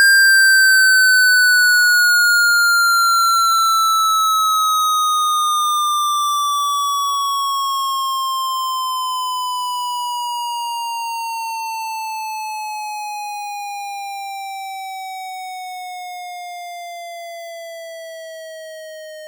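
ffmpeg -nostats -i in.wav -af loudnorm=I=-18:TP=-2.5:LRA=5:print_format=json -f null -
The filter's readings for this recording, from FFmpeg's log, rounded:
"input_i" : "-15.0",
"input_tp" : "-8.2",
"input_lra" : "20.2",
"input_thresh" : "-26.9",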